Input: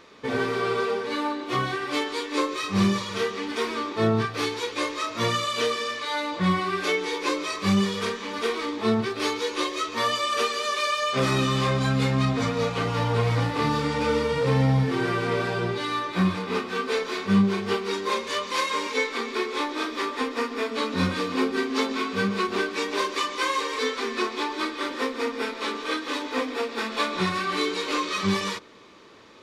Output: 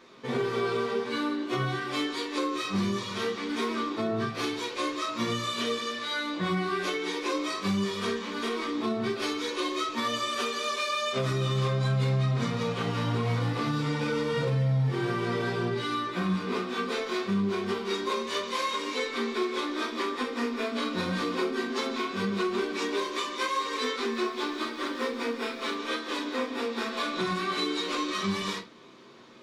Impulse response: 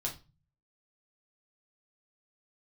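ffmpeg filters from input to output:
-filter_complex "[0:a]asettb=1/sr,asplit=3[link_01][link_02][link_03];[link_01]atrim=end=24.114[link_04];[link_02]atrim=start=24.11:end=25.76,asetpts=PTS-STARTPTS,afade=type=in:duration=0.004:curve=qsin,afade=type=out:start_time=1.646:duration=0.004:curve=qsin,aeval=exprs='sgn(val(0))*max(abs(val(0))-0.00237,0)':channel_layout=same[link_05];[link_03]atrim=start=25.756[link_06];[link_04][link_05]acrossfade=duration=0.004:curve1=hsin:curve2=qsin[link_07];[link_07][link_06]acrossfade=duration=0.004:curve1=qsin:curve2=hsin,lowshelf=frequency=120:width_type=q:width=1.5:gain=-10[link_08];[1:a]atrim=start_sample=2205,afade=type=out:start_time=0.16:duration=0.01,atrim=end_sample=7497[link_09];[link_08][link_09]afir=irnorm=-1:irlink=0,alimiter=limit=-15dB:level=0:latency=1:release=150,volume=-4.5dB"

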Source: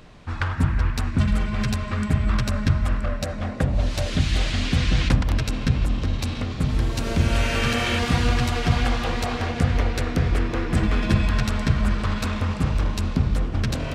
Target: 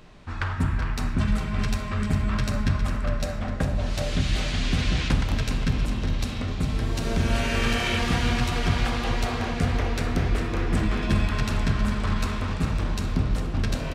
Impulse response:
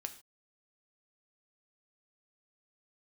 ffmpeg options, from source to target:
-filter_complex "[0:a]aecho=1:1:407|814|1221|1628|2035|2442:0.335|0.178|0.0941|0.0499|0.0264|0.014[link_01];[1:a]atrim=start_sample=2205[link_02];[link_01][link_02]afir=irnorm=-1:irlink=0"

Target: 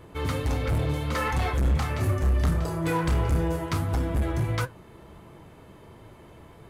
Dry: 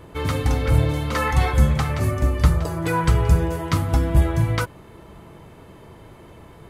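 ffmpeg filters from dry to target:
ffmpeg -i in.wav -filter_complex "[0:a]flanger=delay=7.5:depth=8.7:regen=72:speed=1.5:shape=triangular,volume=21dB,asoftclip=hard,volume=-21dB,asettb=1/sr,asplit=3[link_01][link_02][link_03];[link_01]atrim=end=1.624[link_04];[link_02]atrim=start=1.62:end=3.66,asetpts=PTS-STARTPTS,afade=type=in:duration=0.004:curve=qsin,afade=type=out:start_time=2.036:duration=0.004:curve=qsin,asplit=2[link_05][link_06];[link_06]adelay=30,volume=-7dB[link_07];[link_05][link_07]amix=inputs=2:normalize=0,atrim=end_sample=89964[link_08];[link_03]atrim=start=3.656[link_09];[link_04][link_08]acrossfade=duration=0.004:curve1=hsin:curve2=qsin[link_10];[link_10][link_09]acrossfade=duration=0.004:curve1=qsin:curve2=hsin" out.wav

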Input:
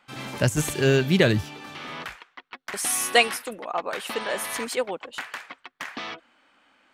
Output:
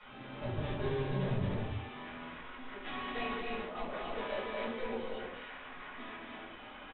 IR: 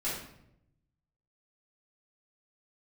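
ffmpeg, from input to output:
-filter_complex "[0:a]aeval=exprs='val(0)+0.5*0.0501*sgn(val(0))':channel_layout=same,agate=range=-21dB:threshold=-23dB:ratio=16:detection=peak,acrossover=split=100[link_01][link_02];[link_02]acompressor=threshold=-28dB:ratio=6[link_03];[link_01][link_03]amix=inputs=2:normalize=0,aresample=8000,asoftclip=type=tanh:threshold=-38.5dB,aresample=44100,aemphasis=mode=reproduction:type=50fm,aecho=1:1:215.7|288.6:0.631|0.708[link_04];[1:a]atrim=start_sample=2205,afade=type=out:start_time=0.4:duration=0.01,atrim=end_sample=18081,asetrate=74970,aresample=44100[link_05];[link_04][link_05]afir=irnorm=-1:irlink=0,volume=1dB"

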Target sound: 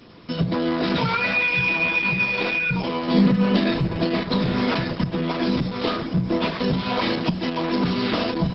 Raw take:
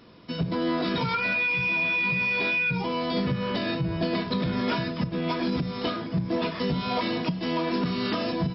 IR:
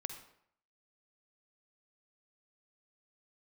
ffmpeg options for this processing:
-filter_complex "[0:a]asplit=3[link_01][link_02][link_03];[link_01]afade=type=out:start_time=3.07:duration=0.02[link_04];[link_02]lowshelf=frequency=130:width_type=q:width=3:gain=-13.5,afade=type=in:start_time=3.07:duration=0.02,afade=type=out:start_time=3.7:duration=0.02[link_05];[link_03]afade=type=in:start_time=3.7:duration=0.02[link_06];[link_04][link_05][link_06]amix=inputs=3:normalize=0,volume=5.5dB" -ar 48000 -c:a libopus -b:a 10k

